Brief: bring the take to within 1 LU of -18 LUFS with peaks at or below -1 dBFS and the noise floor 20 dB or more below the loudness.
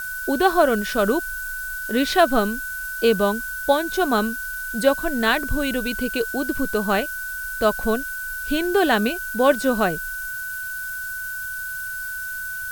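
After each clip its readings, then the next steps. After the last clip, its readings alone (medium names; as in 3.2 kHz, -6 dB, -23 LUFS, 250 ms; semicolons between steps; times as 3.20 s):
steady tone 1.5 kHz; tone level -28 dBFS; noise floor -30 dBFS; noise floor target -43 dBFS; loudness -22.5 LUFS; peak level -3.5 dBFS; loudness target -18.0 LUFS
-> band-stop 1.5 kHz, Q 30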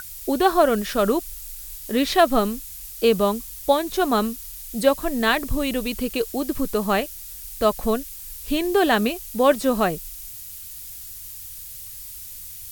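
steady tone not found; noise floor -38 dBFS; noise floor target -42 dBFS
-> noise reduction 6 dB, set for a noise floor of -38 dBFS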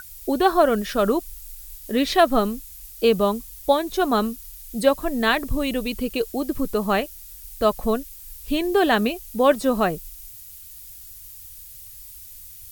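noise floor -42 dBFS; loudness -22.0 LUFS; peak level -3.5 dBFS; loudness target -18.0 LUFS
-> trim +4 dB; peak limiter -1 dBFS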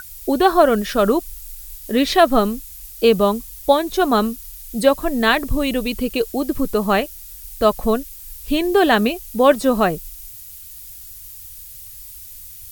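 loudness -18.0 LUFS; peak level -1.0 dBFS; noise floor -38 dBFS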